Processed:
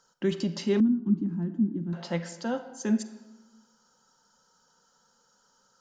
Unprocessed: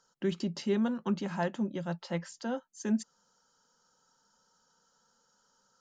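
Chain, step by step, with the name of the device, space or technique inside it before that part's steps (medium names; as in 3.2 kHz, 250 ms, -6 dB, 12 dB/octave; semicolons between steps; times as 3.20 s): filtered reverb send (on a send: high-pass 310 Hz 6 dB/octave + low-pass 6.4 kHz + reverberation RT60 1.2 s, pre-delay 32 ms, DRR 10 dB); 0.80–1.93 s: on the sum: FFT filter 150 Hz 0 dB, 320 Hz +7 dB, 460 Hz -27 dB, 740 Hz -25 dB, 1.6 kHz -22 dB, 2.3 kHz -29 dB; trim +4 dB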